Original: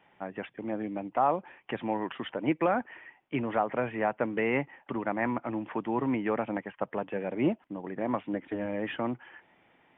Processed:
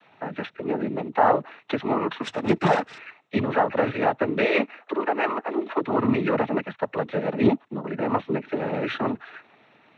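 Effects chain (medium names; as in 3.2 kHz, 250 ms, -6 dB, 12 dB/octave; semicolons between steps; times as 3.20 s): 2.22–2.98 s: comb filter that takes the minimum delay 6.8 ms; 4.43–5.81 s: steep high-pass 270 Hz 96 dB/octave; noise-vocoded speech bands 12; trim +7.5 dB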